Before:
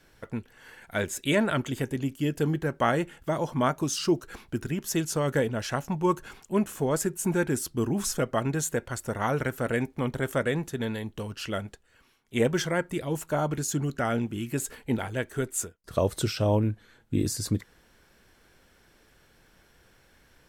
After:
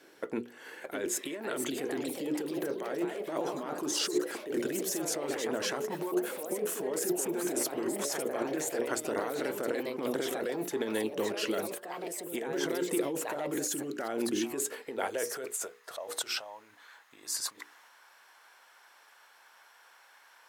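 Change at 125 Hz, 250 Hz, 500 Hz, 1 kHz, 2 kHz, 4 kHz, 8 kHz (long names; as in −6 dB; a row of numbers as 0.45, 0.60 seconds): −21.0, −6.0, −3.5, −7.0, −5.5, −1.0, −1.0 decibels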